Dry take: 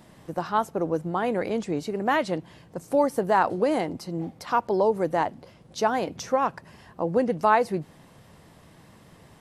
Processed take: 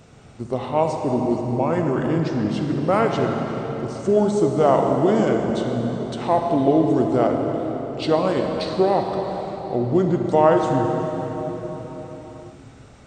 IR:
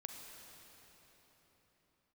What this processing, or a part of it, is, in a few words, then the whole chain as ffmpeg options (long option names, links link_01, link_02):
slowed and reverbed: -filter_complex "[0:a]asetrate=31752,aresample=44100[link_01];[1:a]atrim=start_sample=2205[link_02];[link_01][link_02]afir=irnorm=-1:irlink=0,volume=8.5dB"